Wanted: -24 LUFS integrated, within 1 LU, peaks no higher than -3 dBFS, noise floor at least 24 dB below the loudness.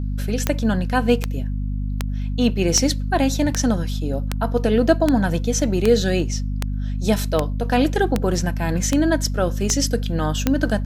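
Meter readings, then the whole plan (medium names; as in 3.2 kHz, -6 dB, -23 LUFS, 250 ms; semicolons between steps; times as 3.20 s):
clicks found 14; hum 50 Hz; highest harmonic 250 Hz; hum level -21 dBFS; loudness -21.0 LUFS; peak level -3.0 dBFS; loudness target -24.0 LUFS
-> de-click; de-hum 50 Hz, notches 5; trim -3 dB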